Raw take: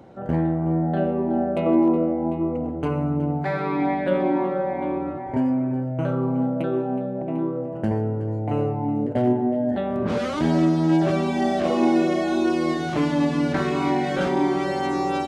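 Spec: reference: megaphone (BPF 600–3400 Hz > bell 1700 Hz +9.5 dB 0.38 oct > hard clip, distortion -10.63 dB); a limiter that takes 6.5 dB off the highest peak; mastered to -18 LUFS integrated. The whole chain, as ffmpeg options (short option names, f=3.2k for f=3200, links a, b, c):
-af "alimiter=limit=-15dB:level=0:latency=1,highpass=600,lowpass=3.4k,equalizer=f=1.7k:t=o:w=0.38:g=9.5,asoftclip=type=hard:threshold=-28dB,volume=14.5dB"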